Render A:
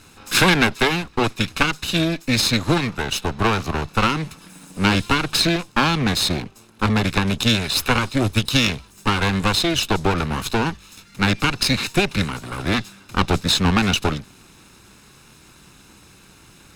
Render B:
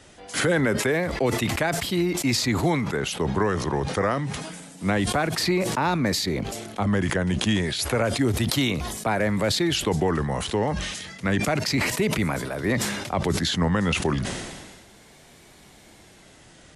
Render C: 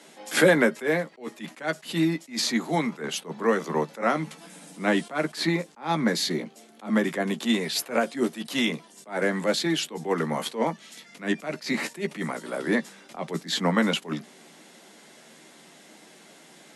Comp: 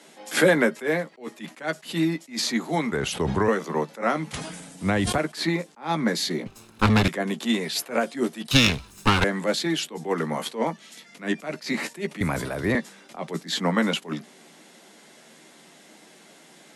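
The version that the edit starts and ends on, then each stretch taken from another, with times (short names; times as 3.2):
C
2.92–3.48 from B
4.33–5.18 from B
6.46–7.08 from A
8.51–9.24 from A
12.21–12.75 from B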